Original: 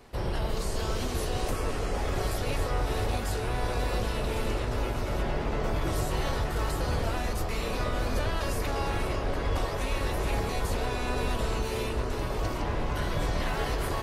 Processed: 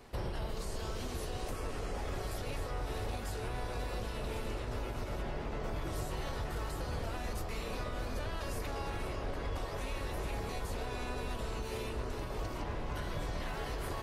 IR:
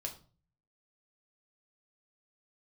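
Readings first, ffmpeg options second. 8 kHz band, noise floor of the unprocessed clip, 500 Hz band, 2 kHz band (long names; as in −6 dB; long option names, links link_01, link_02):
−8.5 dB, −32 dBFS, −8.5 dB, −8.5 dB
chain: -af "alimiter=level_in=2.5dB:limit=-24dB:level=0:latency=1:release=486,volume=-2.5dB,volume=-2dB"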